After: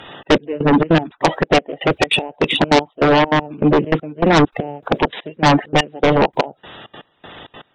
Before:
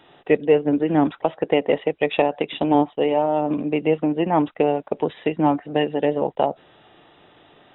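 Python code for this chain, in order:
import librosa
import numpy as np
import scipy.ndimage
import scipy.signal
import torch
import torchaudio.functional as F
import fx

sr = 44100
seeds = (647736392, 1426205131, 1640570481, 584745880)

p1 = fx.spec_quant(x, sr, step_db=30)
p2 = fx.step_gate(p1, sr, bpm=199, pattern='xxx.x...', floor_db=-24.0, edge_ms=4.5)
p3 = fx.fold_sine(p2, sr, drive_db=16, ceiling_db=-5.0)
p4 = p2 + (p3 * 10.0 ** (-9.0 / 20.0))
y = p4 * 10.0 ** (2.5 / 20.0)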